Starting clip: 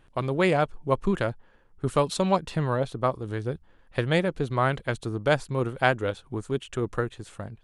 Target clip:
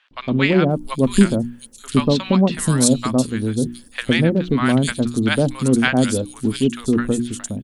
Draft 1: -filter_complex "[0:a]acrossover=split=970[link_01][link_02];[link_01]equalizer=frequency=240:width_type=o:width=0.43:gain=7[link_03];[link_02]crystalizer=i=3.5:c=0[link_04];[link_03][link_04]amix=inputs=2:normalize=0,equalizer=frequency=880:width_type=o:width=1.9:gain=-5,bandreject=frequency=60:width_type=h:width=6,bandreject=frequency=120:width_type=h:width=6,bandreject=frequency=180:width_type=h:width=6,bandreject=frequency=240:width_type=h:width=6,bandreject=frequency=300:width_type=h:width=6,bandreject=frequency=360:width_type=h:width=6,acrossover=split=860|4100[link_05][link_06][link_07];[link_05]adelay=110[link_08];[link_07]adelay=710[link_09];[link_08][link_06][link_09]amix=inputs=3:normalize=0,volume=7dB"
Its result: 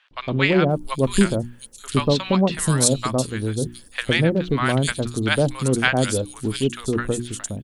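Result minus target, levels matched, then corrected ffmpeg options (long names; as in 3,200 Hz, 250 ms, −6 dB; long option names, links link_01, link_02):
250 Hz band −3.0 dB
-filter_complex "[0:a]acrossover=split=970[link_01][link_02];[link_01]equalizer=frequency=240:width_type=o:width=0.43:gain=17.5[link_03];[link_02]crystalizer=i=3.5:c=0[link_04];[link_03][link_04]amix=inputs=2:normalize=0,equalizer=frequency=880:width_type=o:width=1.9:gain=-5,bandreject=frequency=60:width_type=h:width=6,bandreject=frequency=120:width_type=h:width=6,bandreject=frequency=180:width_type=h:width=6,bandreject=frequency=240:width_type=h:width=6,bandreject=frequency=300:width_type=h:width=6,bandreject=frequency=360:width_type=h:width=6,acrossover=split=860|4100[link_05][link_06][link_07];[link_05]adelay=110[link_08];[link_07]adelay=710[link_09];[link_08][link_06][link_09]amix=inputs=3:normalize=0,volume=7dB"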